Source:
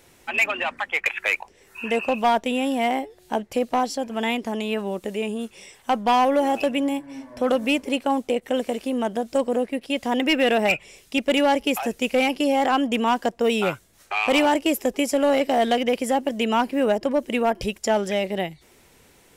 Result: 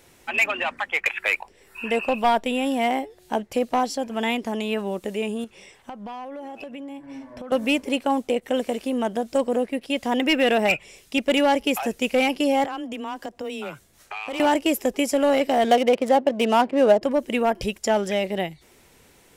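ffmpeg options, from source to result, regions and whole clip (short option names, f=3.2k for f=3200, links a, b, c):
-filter_complex "[0:a]asettb=1/sr,asplit=3[a][b][c];[a]atrim=end=1.174[d];[b]atrim=start=1.17:end=2.66,asetpts=PTS-STARTPTS,afade=t=in:d=0.004:c=qsin,afade=t=out:st=1.486:d=0.004:c=qsin,bandreject=f=6.3k:w=5.9,asubboost=boost=7:cutoff=53[e];[c]atrim=start=2.656[f];[d][e]acrossfade=d=0.004:c1=hsin:c2=qsin[g];[g][f]acrossfade=d=0.004:c1=qsin:c2=hsin,asettb=1/sr,asplit=3[h][i][j];[h]atrim=end=5.444[k];[i]atrim=start=5.44:end=7.52,asetpts=PTS-STARTPTS,afade=t=in:d=0.004:c=qsin,afade=t=out:st=2.076:d=0.004:c=qsin,highshelf=f=5.2k:g=-10,acompressor=threshold=-33dB:ratio=10:attack=3.2:release=140:knee=1:detection=peak[l];[j]atrim=start=7.516[m];[k][l]acrossfade=d=0.004:c1=hsin:c2=qsin[n];[n][m]acrossfade=d=0.004:c1=qsin:c2=hsin,asettb=1/sr,asplit=3[o][p][q];[o]atrim=end=12.644[r];[p]atrim=start=12.64:end=14.4,asetpts=PTS-STARTPTS,afade=t=in:d=0.004:c=qsin,afade=t=out:st=1.756:d=0.004:c=qsin,acompressor=threshold=-32dB:ratio=3:attack=3.2:release=140:knee=1:detection=peak,afreqshift=15[s];[q]atrim=start=14.396[t];[r][s]acrossfade=d=0.004:c1=hsin:c2=qsin[u];[u][t]acrossfade=d=0.004:c1=qsin:c2=hsin,asettb=1/sr,asplit=3[v][w][x];[v]atrim=end=15.644[y];[w]atrim=start=15.64:end=17.02,asetpts=PTS-STARTPTS,afade=t=in:d=0.004:c=qsin,afade=t=out:st=1.376:d=0.004:c=qsin,equalizer=f=620:w=1.7:g=6.5,adynamicsmooth=sensitivity=5.5:basefreq=1.2k,highpass=93[z];[x]atrim=start=17.016[aa];[y][z]acrossfade=d=0.004:c1=hsin:c2=qsin[ab];[ab][aa]acrossfade=d=0.004:c1=qsin:c2=hsin"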